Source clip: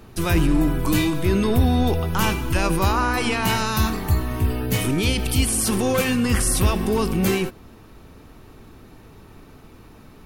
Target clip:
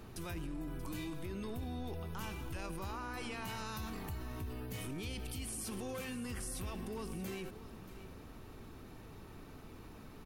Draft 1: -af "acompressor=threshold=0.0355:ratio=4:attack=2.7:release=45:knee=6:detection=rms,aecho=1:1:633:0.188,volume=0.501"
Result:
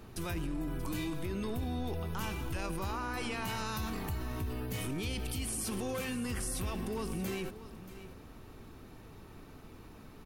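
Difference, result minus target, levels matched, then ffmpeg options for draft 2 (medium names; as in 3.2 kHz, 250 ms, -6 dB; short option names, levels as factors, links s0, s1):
compression: peak gain reduction -5.5 dB
-af "acompressor=threshold=0.015:ratio=4:attack=2.7:release=45:knee=6:detection=rms,aecho=1:1:633:0.188,volume=0.501"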